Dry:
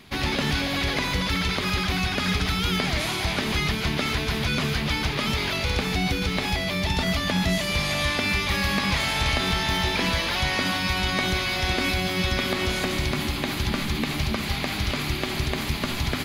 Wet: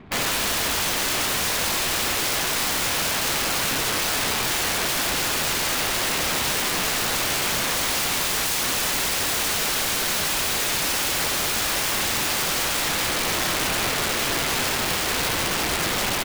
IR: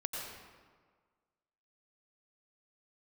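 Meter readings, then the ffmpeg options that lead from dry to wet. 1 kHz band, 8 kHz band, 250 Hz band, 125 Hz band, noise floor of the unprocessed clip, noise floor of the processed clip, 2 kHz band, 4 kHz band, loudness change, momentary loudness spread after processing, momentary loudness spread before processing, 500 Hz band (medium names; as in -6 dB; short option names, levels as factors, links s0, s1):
+2.5 dB, +13.0 dB, -6.0 dB, -9.0 dB, -29 dBFS, -24 dBFS, +1.0 dB, +2.5 dB, +3.0 dB, 1 LU, 4 LU, +0.5 dB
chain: -filter_complex "[0:a]highshelf=f=6500:g=-10.5,bandreject=f=60:t=h:w=6,bandreject=f=120:t=h:w=6,aecho=1:1:602|1204|1806|2408|3010|3612:0.224|0.13|0.0753|0.0437|0.0253|0.0147,adynamicsmooth=sensitivity=7.5:basefreq=1300,asplit=2[s0][s1];[1:a]atrim=start_sample=2205[s2];[s1][s2]afir=irnorm=-1:irlink=0,volume=0.841[s3];[s0][s3]amix=inputs=2:normalize=0,aeval=exprs='(mod(11.9*val(0)+1,2)-1)/11.9':c=same,volume=1.33"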